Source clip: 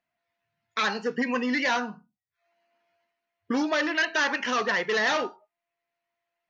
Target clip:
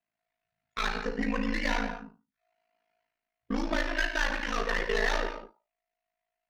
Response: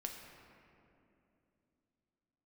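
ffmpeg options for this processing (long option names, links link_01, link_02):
-filter_complex "[0:a]aeval=exprs='0.141*(cos(1*acos(clip(val(0)/0.141,-1,1)))-cos(1*PI/2))+0.0251*(cos(2*acos(clip(val(0)/0.141,-1,1)))-cos(2*PI/2))+0.00562*(cos(4*acos(clip(val(0)/0.141,-1,1)))-cos(4*PI/2))+0.00708*(cos(6*acos(clip(val(0)/0.141,-1,1)))-cos(6*PI/2))':channel_layout=same[link_01];[1:a]atrim=start_sample=2205,afade=type=out:start_time=0.28:duration=0.01,atrim=end_sample=12789[link_02];[link_01][link_02]afir=irnorm=-1:irlink=0,aeval=exprs='val(0)*sin(2*PI*27*n/s)':channel_layout=same"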